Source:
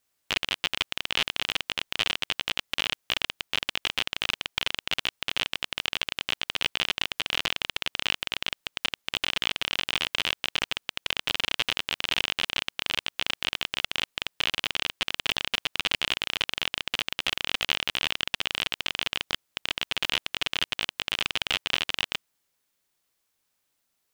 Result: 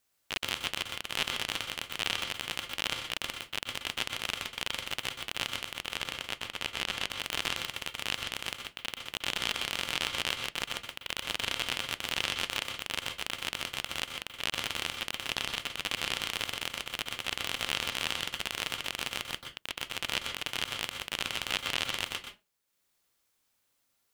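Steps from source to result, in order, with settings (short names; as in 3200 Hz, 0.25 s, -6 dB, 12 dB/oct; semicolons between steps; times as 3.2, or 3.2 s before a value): transient shaper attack -10 dB, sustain -6 dB; 5.81–7.04 high shelf 8100 Hz -6 dB; on a send: reverb RT60 0.25 s, pre-delay 0.119 s, DRR 5 dB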